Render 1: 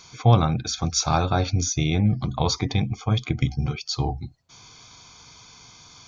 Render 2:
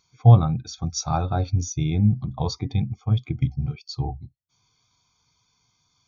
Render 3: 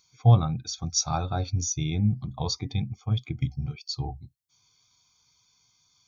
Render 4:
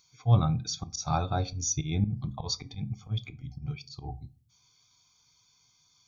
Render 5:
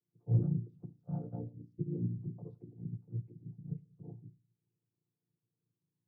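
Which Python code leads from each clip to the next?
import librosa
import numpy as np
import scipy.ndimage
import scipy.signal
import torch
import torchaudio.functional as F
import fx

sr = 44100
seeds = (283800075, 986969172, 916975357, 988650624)

y1 = fx.spectral_expand(x, sr, expansion=1.5)
y2 = fx.high_shelf(y1, sr, hz=2500.0, db=10.5)
y2 = y2 * librosa.db_to_amplitude(-5.0)
y3 = fx.auto_swell(y2, sr, attack_ms=131.0)
y3 = fx.room_shoebox(y3, sr, seeds[0], volume_m3=230.0, walls='furnished', distance_m=0.31)
y4 = fx.chord_vocoder(y3, sr, chord='major triad', root=46)
y4 = fx.lowpass_res(y4, sr, hz=390.0, q=4.6)
y4 = y4 * librosa.db_to_amplitude(-7.5)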